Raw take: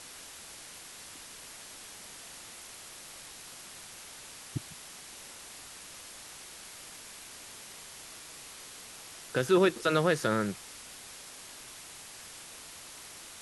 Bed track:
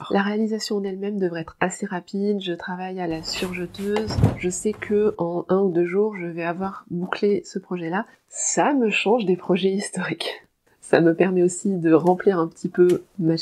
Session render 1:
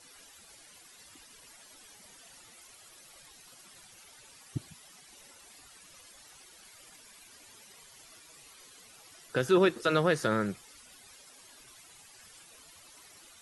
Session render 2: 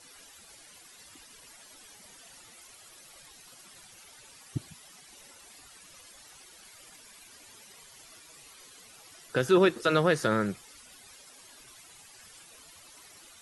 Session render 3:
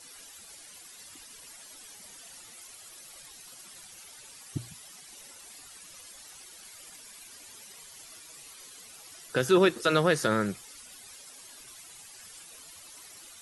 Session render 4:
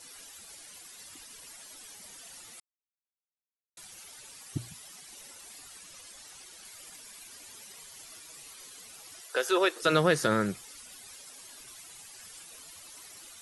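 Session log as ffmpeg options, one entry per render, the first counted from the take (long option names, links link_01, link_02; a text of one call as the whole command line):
ffmpeg -i in.wav -af "afftdn=noise_reduction=13:noise_floor=-48" out.wav
ffmpeg -i in.wav -af "volume=2dB" out.wav
ffmpeg -i in.wav -af "highshelf=frequency=4300:gain=6,bandreject=frequency=60:width_type=h:width=6,bandreject=frequency=120:width_type=h:width=6" out.wav
ffmpeg -i in.wav -filter_complex "[0:a]asettb=1/sr,asplit=3[link_01][link_02][link_03];[link_01]atrim=end=5.814[link_04];[link_02]atrim=start=5.81:end=6.65,asetpts=PTS-STARTPTS,afade=type=in:duration=0.004:curve=qsin,afade=type=out:start_time=0.836:duration=0.004:curve=qsin,lowpass=11000[link_05];[link_03]atrim=start=6.646[link_06];[link_04][link_05]acrossfade=duration=0.004:curve1=hsin:curve2=qsin[link_07];[link_07][link_06]acrossfade=duration=0.004:curve1=qsin:curve2=hsin,asettb=1/sr,asplit=3[link_08][link_09][link_10];[link_08]atrim=end=9.214[link_11];[link_09]atrim=start=9.21:end=9.82,asetpts=PTS-STARTPTS,afade=type=in:duration=0.004:curve=qsin,afade=type=out:start_time=0.606:duration=0.004:curve=qsin,highpass=frequency=430:width=0.5412,highpass=frequency=430:width=1.3066[link_12];[link_10]atrim=start=9.816[link_13];[link_11][link_12]acrossfade=duration=0.004:curve1=hsin:curve2=qsin[link_14];[link_14][link_13]acrossfade=duration=0.004:curve1=qsin:curve2=hsin,asplit=3[link_15][link_16][link_17];[link_15]atrim=end=2.6,asetpts=PTS-STARTPTS,afade=type=out:start_time=2.596:duration=0.004:curve=hsin[link_18];[link_16]atrim=start=2.6:end=3.77,asetpts=PTS-STARTPTS,volume=0[link_19];[link_17]atrim=start=3.77,asetpts=PTS-STARTPTS,afade=type=in:duration=0.004:curve=hsin[link_20];[link_18][link_19][link_20]concat=n=3:v=0:a=1" out.wav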